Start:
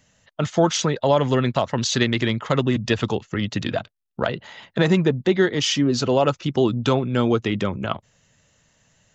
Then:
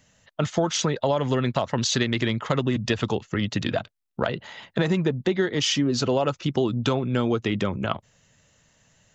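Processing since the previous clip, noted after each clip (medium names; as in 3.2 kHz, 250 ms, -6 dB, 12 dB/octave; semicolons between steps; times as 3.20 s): compression 4:1, threshold -19 dBFS, peak gain reduction 6.5 dB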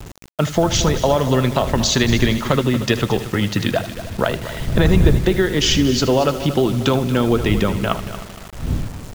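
wind noise 110 Hz -31 dBFS; multi-head delay 77 ms, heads first and third, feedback 57%, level -14 dB; bit crusher 7-bit; trim +6 dB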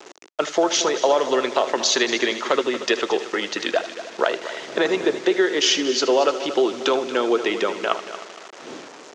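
elliptic band-pass 360–6500 Hz, stop band 70 dB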